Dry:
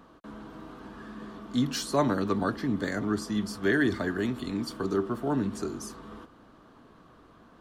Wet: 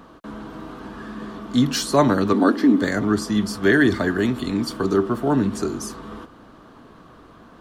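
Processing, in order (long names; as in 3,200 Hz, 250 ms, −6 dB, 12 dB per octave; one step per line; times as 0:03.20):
0:02.33–0:02.82: low shelf with overshoot 180 Hz −14 dB, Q 3
level +8.5 dB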